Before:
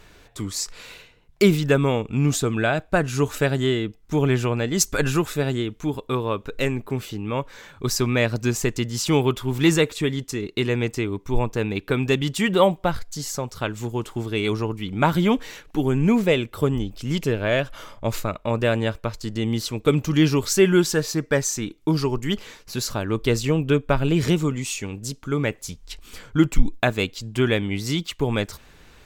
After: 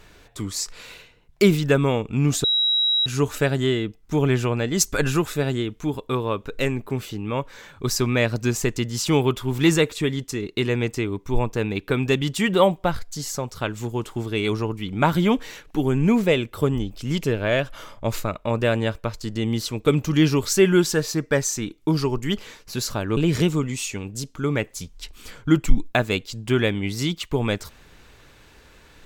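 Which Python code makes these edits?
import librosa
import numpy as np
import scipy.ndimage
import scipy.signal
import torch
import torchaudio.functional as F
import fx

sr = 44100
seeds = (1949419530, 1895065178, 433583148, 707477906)

y = fx.edit(x, sr, fx.bleep(start_s=2.44, length_s=0.62, hz=3860.0, db=-17.0),
    fx.cut(start_s=23.17, length_s=0.88), tone=tone)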